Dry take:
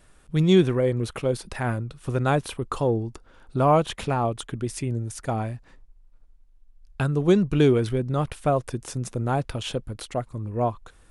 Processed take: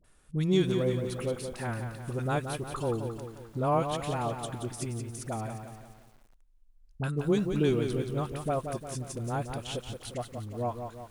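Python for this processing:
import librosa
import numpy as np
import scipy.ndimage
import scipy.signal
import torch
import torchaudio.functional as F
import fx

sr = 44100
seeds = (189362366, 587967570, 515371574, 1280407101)

y = fx.high_shelf(x, sr, hz=6700.0, db=6.0)
y = fx.dispersion(y, sr, late='highs', ms=43.0, hz=810.0)
y = fx.echo_crushed(y, sr, ms=176, feedback_pct=55, bits=8, wet_db=-7.0)
y = y * librosa.db_to_amplitude(-8.0)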